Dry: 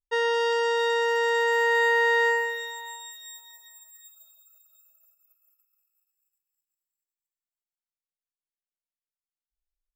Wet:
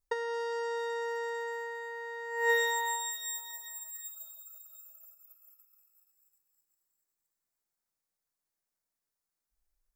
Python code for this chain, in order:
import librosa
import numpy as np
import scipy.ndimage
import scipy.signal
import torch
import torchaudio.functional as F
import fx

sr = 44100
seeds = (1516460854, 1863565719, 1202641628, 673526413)

y = fx.over_compress(x, sr, threshold_db=-30.0, ratio=-0.5)
y = fx.peak_eq(y, sr, hz=3000.0, db=-11.0, octaves=0.69)